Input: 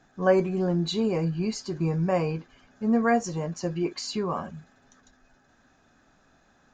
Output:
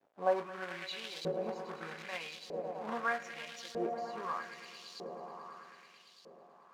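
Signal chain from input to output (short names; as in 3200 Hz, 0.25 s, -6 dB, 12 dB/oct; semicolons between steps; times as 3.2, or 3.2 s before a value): swelling echo 0.11 s, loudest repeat 5, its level -13 dB; companded quantiser 4-bit; LFO band-pass saw up 0.8 Hz 480–4400 Hz; gain -2.5 dB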